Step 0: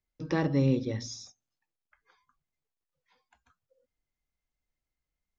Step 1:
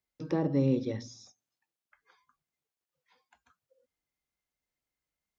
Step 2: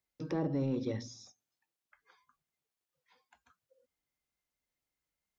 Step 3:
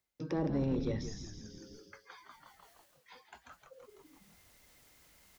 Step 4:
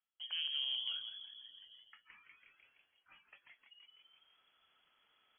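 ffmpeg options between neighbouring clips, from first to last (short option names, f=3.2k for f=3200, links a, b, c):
-filter_complex "[0:a]highpass=f=170:p=1,acrossover=split=870[a][b];[b]acompressor=threshold=-50dB:ratio=6[c];[a][c]amix=inputs=2:normalize=0,volume=1dB"
-filter_complex "[0:a]asplit=2[a][b];[b]asoftclip=type=tanh:threshold=-25.5dB,volume=-3.5dB[c];[a][c]amix=inputs=2:normalize=0,alimiter=limit=-20dB:level=0:latency=1:release=95,volume=-5dB"
-filter_complex "[0:a]asplit=7[a][b][c][d][e][f][g];[b]adelay=166,afreqshift=-110,volume=-8dB[h];[c]adelay=332,afreqshift=-220,volume=-13.8dB[i];[d]adelay=498,afreqshift=-330,volume=-19.7dB[j];[e]adelay=664,afreqshift=-440,volume=-25.5dB[k];[f]adelay=830,afreqshift=-550,volume=-31.4dB[l];[g]adelay=996,afreqshift=-660,volume=-37.2dB[m];[a][h][i][j][k][l][m]amix=inputs=7:normalize=0,areverse,acompressor=mode=upward:threshold=-42dB:ratio=2.5,areverse,asoftclip=type=hard:threshold=-25dB"
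-af "lowpass=f=2.9k:t=q:w=0.5098,lowpass=f=2.9k:t=q:w=0.6013,lowpass=f=2.9k:t=q:w=0.9,lowpass=f=2.9k:t=q:w=2.563,afreqshift=-3400,volume=-6.5dB"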